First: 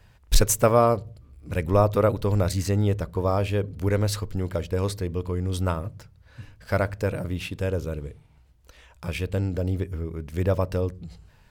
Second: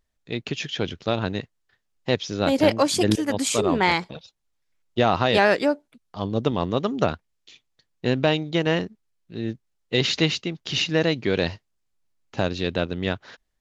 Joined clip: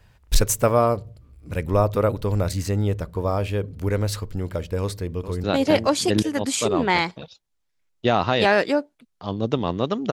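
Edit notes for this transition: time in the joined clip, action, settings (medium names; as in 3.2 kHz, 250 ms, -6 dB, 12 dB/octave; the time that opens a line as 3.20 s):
first
4.80–5.44 s: echo throw 430 ms, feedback 25%, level -10.5 dB
5.44 s: go over to second from 2.37 s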